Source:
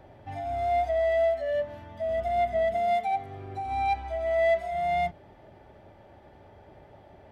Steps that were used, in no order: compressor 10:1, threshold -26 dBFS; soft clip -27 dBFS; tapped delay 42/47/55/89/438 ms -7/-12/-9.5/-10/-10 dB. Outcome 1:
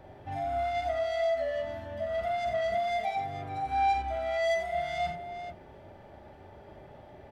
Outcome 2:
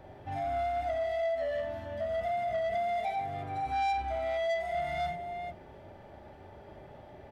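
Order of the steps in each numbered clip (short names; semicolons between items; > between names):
soft clip > compressor > tapped delay; compressor > tapped delay > soft clip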